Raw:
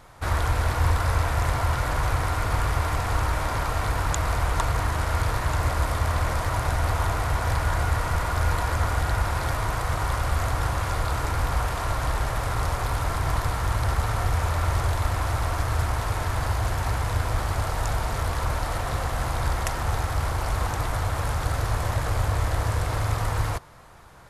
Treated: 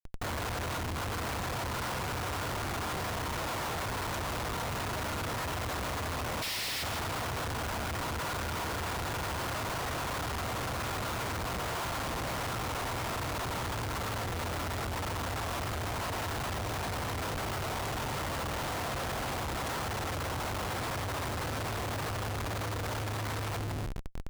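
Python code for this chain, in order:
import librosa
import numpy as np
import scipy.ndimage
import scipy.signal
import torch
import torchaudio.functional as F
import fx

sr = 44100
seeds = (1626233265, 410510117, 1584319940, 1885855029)

y = fx.spec_paint(x, sr, seeds[0], shape='noise', start_s=6.42, length_s=0.41, low_hz=1700.0, high_hz=5700.0, level_db=-19.0)
y = 10.0 ** (-24.0 / 20.0) * np.tanh(y / 10.0 ** (-24.0 / 20.0))
y = fx.bandpass_edges(y, sr, low_hz=130.0, high_hz=7400.0)
y = fx.echo_feedback(y, sr, ms=161, feedback_pct=48, wet_db=-12.0)
y = fx.schmitt(y, sr, flips_db=-41.5)
y = F.gain(torch.from_numpy(y), -2.0).numpy()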